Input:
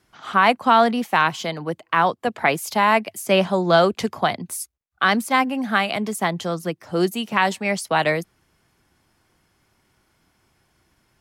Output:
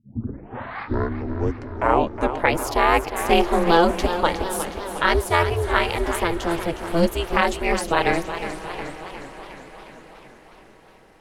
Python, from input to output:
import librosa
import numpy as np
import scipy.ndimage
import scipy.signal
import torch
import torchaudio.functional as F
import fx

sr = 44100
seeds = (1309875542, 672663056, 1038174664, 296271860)

p1 = fx.tape_start_head(x, sr, length_s=2.57)
p2 = scipy.signal.sosfilt(scipy.signal.butter(4, 42.0, 'highpass', fs=sr, output='sos'), p1)
p3 = fx.low_shelf(p2, sr, hz=250.0, db=6.5)
p4 = p3 + fx.echo_diffused(p3, sr, ms=750, feedback_pct=49, wet_db=-15.5, dry=0)
p5 = p4 * np.sin(2.0 * np.pi * 170.0 * np.arange(len(p4)) / sr)
p6 = fx.echo_warbled(p5, sr, ms=362, feedback_pct=61, rate_hz=2.8, cents=110, wet_db=-10.5)
y = F.gain(torch.from_numpy(p6), 1.5).numpy()